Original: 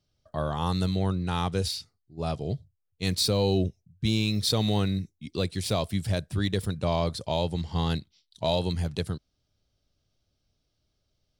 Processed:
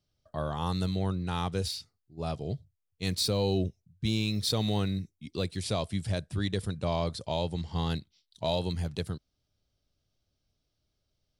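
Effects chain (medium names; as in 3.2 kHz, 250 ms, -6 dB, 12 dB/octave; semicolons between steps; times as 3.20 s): 5.57–7.73 s: steep low-pass 11 kHz 48 dB/octave; trim -3.5 dB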